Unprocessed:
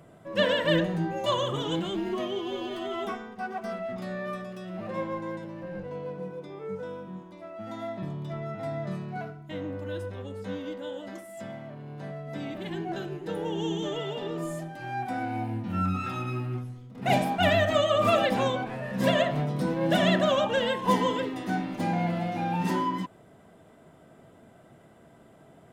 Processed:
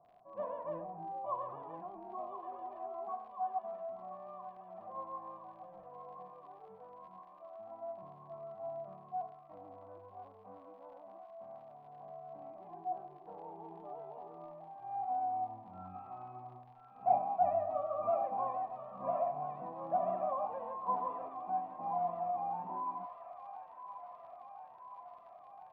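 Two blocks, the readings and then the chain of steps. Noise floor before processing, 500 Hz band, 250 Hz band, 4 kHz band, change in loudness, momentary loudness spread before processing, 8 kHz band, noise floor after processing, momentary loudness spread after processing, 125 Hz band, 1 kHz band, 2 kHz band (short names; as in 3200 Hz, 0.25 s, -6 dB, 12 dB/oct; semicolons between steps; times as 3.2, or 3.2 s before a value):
-55 dBFS, -11.5 dB, -24.5 dB, under -40 dB, -10.0 dB, 15 LU, under -30 dB, -57 dBFS, 18 LU, -25.5 dB, -4.5 dB, under -30 dB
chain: vocal tract filter a; crackle 33/s -49 dBFS; air absorption 430 m; thin delay 1.024 s, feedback 71%, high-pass 1500 Hz, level -3 dB; gain +2.5 dB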